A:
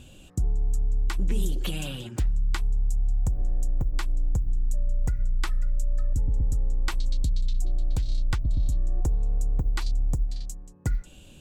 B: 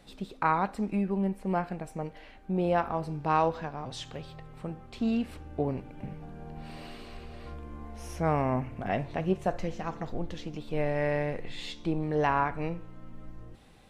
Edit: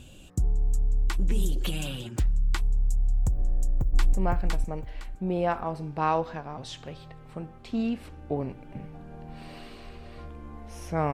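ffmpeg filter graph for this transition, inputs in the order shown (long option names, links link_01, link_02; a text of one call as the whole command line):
ffmpeg -i cue0.wav -i cue1.wav -filter_complex "[0:a]apad=whole_dur=11.13,atrim=end=11.13,atrim=end=4.132[link_01];[1:a]atrim=start=1.408:end=8.41[link_02];[link_01][link_02]acrossfade=duration=0.004:curve1=hsin:curve2=hsin,asplit=2[link_03][link_04];[link_04]afade=type=in:start_time=3.42:duration=0.01,afade=type=out:start_time=4.13:duration=0.01,aecho=0:1:510|1020|1530|2040:0.841395|0.210349|0.0525872|0.0131468[link_05];[link_03][link_05]amix=inputs=2:normalize=0" out.wav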